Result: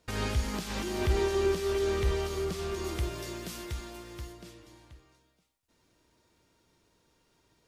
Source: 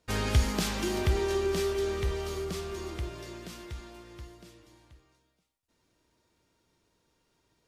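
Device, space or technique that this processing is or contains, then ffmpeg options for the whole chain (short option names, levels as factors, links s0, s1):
de-esser from a sidechain: -filter_complex "[0:a]asplit=2[s0][s1];[s1]highpass=f=6900:w=0.5412,highpass=f=6900:w=1.3066,apad=whole_len=338303[s2];[s0][s2]sidechaincompress=threshold=0.00282:ratio=4:attack=1.2:release=35,asettb=1/sr,asplit=3[s3][s4][s5];[s3]atrim=end=2.844[s6];[s4]atrim=start=2.84:end=4.33,asetpts=PTS-STARTPTS,afade=t=in:d=0.004:c=qsin,afade=t=out:st=1.486:d=0.004:c=qsin,highshelf=f=7700:g=9.5[s7];[s5]atrim=start=4.326[s8];[s6][s7]acrossfade=d=0.004:c1=hsin:c2=qsin[s9];[s9][s8]acrossfade=d=0.004:c1=qsin:c2=hsin,volume=1.5"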